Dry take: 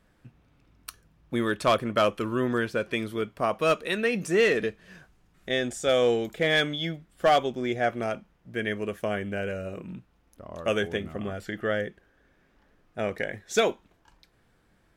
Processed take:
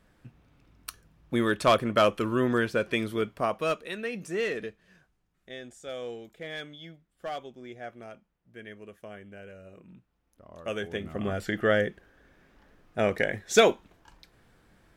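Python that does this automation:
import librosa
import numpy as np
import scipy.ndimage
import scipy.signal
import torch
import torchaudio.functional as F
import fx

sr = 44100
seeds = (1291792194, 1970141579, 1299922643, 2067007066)

y = fx.gain(x, sr, db=fx.line((3.28, 1.0), (3.9, -8.0), (4.57, -8.0), (5.55, -15.0), (9.49, -15.0), (10.82, -6.5), (11.34, 4.0)))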